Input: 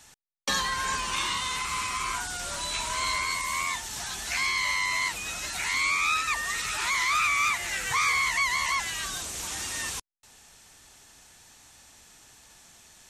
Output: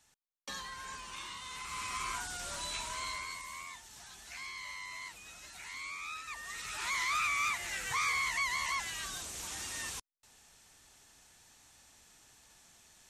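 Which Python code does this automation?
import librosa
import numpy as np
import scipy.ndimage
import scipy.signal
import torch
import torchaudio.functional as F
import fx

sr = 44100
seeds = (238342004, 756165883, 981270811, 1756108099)

y = fx.gain(x, sr, db=fx.line((1.4, -15.5), (1.96, -7.0), (2.67, -7.0), (3.71, -17.0), (6.21, -17.0), (6.93, -7.5)))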